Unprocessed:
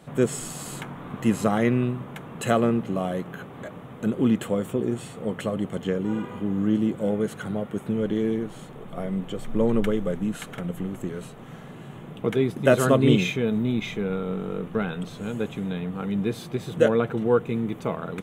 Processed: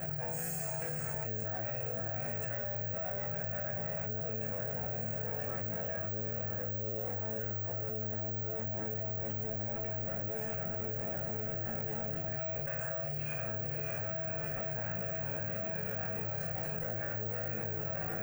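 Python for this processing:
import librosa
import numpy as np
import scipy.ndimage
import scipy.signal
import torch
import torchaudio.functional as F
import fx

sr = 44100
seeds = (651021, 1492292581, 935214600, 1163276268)

y = fx.lower_of_two(x, sr, delay_ms=1.2)
y = scipy.signal.sosfilt(scipy.signal.butter(2, 47.0, 'highpass', fs=sr, output='sos'), y)
y = fx.low_shelf(y, sr, hz=160.0, db=6.5)
y = fx.fixed_phaser(y, sr, hz=980.0, stages=6)
y = fx.resonator_bank(y, sr, root=45, chord='sus4', decay_s=0.7)
y = fx.echo_diffused(y, sr, ms=569, feedback_pct=78, wet_db=-8.0)
y = (np.kron(scipy.signal.resample_poly(y, 1, 2), np.eye(2)[0]) * 2)[:len(y)]
y = fx.env_flatten(y, sr, amount_pct=100)
y = F.gain(torch.from_numpy(y), -5.5).numpy()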